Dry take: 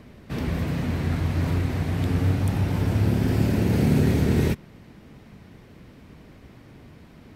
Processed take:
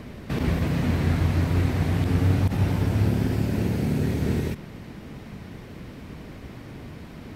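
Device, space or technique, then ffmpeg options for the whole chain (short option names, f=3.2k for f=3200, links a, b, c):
de-esser from a sidechain: -filter_complex "[0:a]asplit=2[a][b];[b]highpass=f=5.7k:w=0.5412,highpass=f=5.7k:w=1.3066,apad=whole_len=324416[c];[a][c]sidechaincompress=threshold=-55dB:ratio=8:attack=1.3:release=32,volume=7.5dB"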